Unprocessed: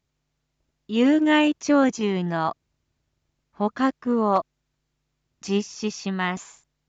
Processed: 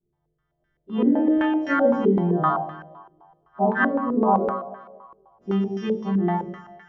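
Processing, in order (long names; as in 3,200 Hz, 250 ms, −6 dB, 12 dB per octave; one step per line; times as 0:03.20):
every partial snapped to a pitch grid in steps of 2 semitones
rectangular room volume 96 cubic metres, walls mixed, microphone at 1.2 metres
in parallel at −5.5 dB: wrap-around overflow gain 4 dB
on the sum: downward compressor 4 to 1, threshold −12 dBFS, peak gain reduction 6 dB
on a send: feedback echo with a high-pass in the loop 228 ms, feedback 49%, high-pass 380 Hz, level −15 dB
on the sum: low-pass on a step sequencer 7.8 Hz 380–1,600 Hz
level −7.5 dB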